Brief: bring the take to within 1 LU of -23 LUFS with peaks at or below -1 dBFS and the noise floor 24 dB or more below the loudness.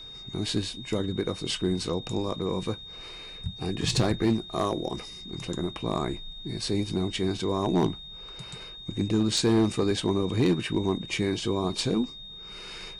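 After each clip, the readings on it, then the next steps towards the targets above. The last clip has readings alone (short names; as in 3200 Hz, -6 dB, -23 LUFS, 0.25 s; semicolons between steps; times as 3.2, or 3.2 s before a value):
clipped 0.5%; flat tops at -16.5 dBFS; steady tone 3700 Hz; tone level -41 dBFS; loudness -28.5 LUFS; peak -16.5 dBFS; loudness target -23.0 LUFS
-> clip repair -16.5 dBFS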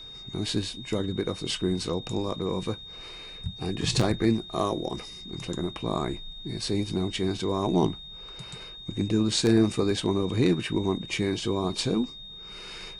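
clipped 0.0%; steady tone 3700 Hz; tone level -41 dBFS
-> notch 3700 Hz, Q 30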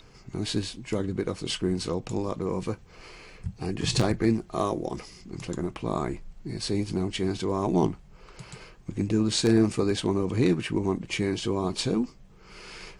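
steady tone none; loudness -28.0 LUFS; peak -7.5 dBFS; loudness target -23.0 LUFS
-> gain +5 dB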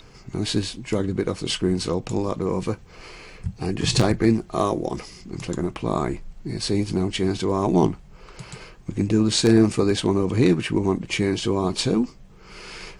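loudness -23.0 LUFS; peak -2.5 dBFS; noise floor -47 dBFS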